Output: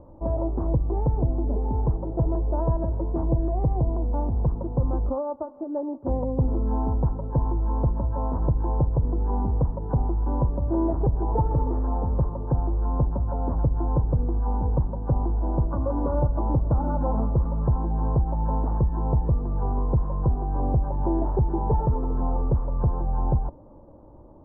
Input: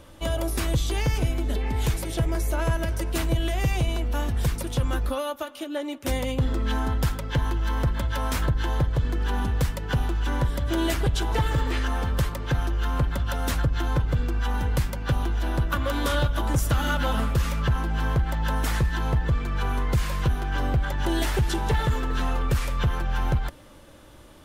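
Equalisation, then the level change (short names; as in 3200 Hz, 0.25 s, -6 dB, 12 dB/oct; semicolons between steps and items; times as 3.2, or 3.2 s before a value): elliptic low-pass 950 Hz, stop band 70 dB; +2.0 dB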